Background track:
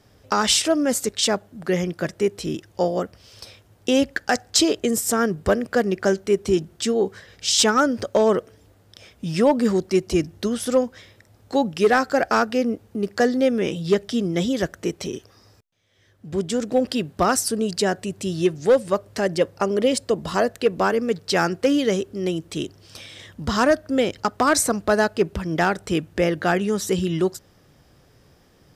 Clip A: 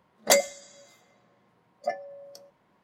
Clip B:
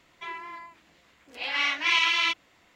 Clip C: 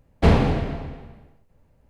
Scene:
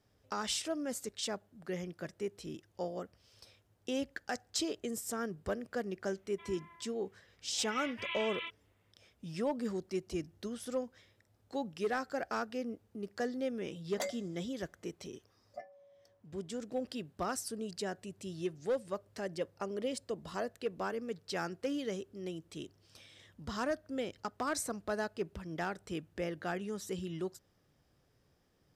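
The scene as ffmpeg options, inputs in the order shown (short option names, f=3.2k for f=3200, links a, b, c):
-filter_complex "[0:a]volume=-17dB[a];[2:a]aresample=8000,aresample=44100[b];[1:a]highshelf=f=4.7k:g=-7[c];[b]atrim=end=2.75,asetpts=PTS-STARTPTS,volume=-17dB,afade=t=in:d=0.004:c=hsin,afade=t=out:st=2.746:d=0.004:c=hsin,adelay=6170[d];[c]atrim=end=2.83,asetpts=PTS-STARTPTS,volume=-16.5dB,afade=t=in:d=0.004:c=hsin,afade=t=out:st=2.826:d=0.004:c=hsin,adelay=13700[e];[a][d][e]amix=inputs=3:normalize=0"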